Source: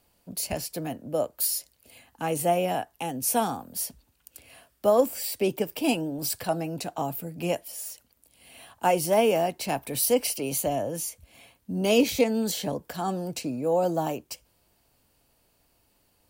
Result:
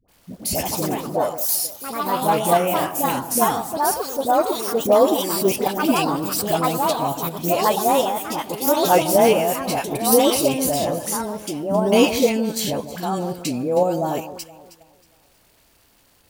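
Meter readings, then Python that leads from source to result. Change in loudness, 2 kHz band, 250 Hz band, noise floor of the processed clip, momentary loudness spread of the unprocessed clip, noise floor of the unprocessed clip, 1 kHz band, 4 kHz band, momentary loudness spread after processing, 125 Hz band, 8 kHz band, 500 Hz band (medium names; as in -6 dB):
+7.0 dB, +7.5 dB, +7.5 dB, -58 dBFS, 12 LU, -68 dBFS, +10.5 dB, +8.0 dB, 10 LU, +6.0 dB, +6.5 dB, +7.0 dB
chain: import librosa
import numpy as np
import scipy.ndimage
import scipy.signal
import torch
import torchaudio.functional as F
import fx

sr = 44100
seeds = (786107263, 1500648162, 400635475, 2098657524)

p1 = fx.echo_alternate(x, sr, ms=158, hz=1200.0, feedback_pct=56, wet_db=-11.5)
p2 = fx.dmg_crackle(p1, sr, seeds[0], per_s=400.0, level_db=-51.0)
p3 = fx.dispersion(p2, sr, late='highs', ms=84.0, hz=700.0)
p4 = fx.level_steps(p3, sr, step_db=11)
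p5 = p3 + F.gain(torch.from_numpy(p4), 3.0).numpy()
y = fx.echo_pitch(p5, sr, ms=166, semitones=3, count=3, db_per_echo=-3.0)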